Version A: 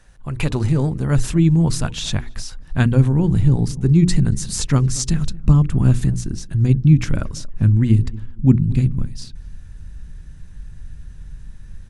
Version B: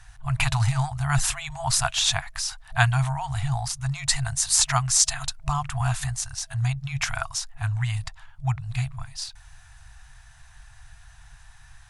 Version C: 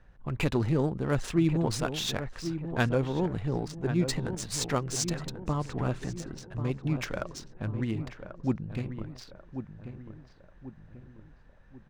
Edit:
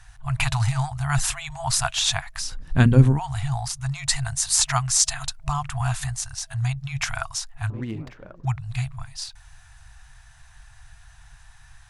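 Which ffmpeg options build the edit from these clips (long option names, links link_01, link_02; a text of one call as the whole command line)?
ffmpeg -i take0.wav -i take1.wav -i take2.wav -filter_complex "[1:a]asplit=3[link_01][link_02][link_03];[link_01]atrim=end=2.49[link_04];[0:a]atrim=start=2.39:end=3.2[link_05];[link_02]atrim=start=3.1:end=7.702[link_06];[2:a]atrim=start=7.698:end=8.452[link_07];[link_03]atrim=start=8.448[link_08];[link_04][link_05]acrossfade=duration=0.1:curve1=tri:curve2=tri[link_09];[link_09][link_06]acrossfade=duration=0.1:curve1=tri:curve2=tri[link_10];[link_10][link_07]acrossfade=duration=0.004:curve1=hsin:curve2=hsin[link_11];[link_11][link_08]acrossfade=duration=0.004:curve1=hsin:curve2=hsin" out.wav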